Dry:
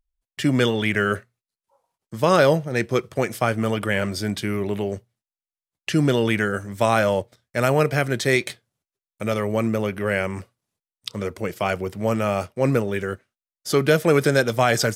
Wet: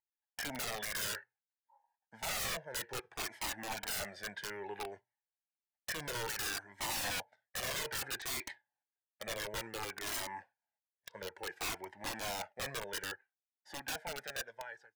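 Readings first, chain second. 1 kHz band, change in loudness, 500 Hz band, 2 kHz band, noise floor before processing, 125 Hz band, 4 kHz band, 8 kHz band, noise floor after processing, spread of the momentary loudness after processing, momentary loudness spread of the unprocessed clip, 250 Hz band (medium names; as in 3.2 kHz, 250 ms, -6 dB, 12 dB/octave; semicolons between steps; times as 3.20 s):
-17.5 dB, -17.5 dB, -25.0 dB, -15.0 dB, under -85 dBFS, -28.5 dB, -9.0 dB, -5.5 dB, under -85 dBFS, 11 LU, 12 LU, -28.5 dB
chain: fade out at the end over 2.25 s; two resonant band-passes 1.2 kHz, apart 0.93 oct; integer overflow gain 32.5 dB; Shepard-style flanger falling 0.59 Hz; trim +4.5 dB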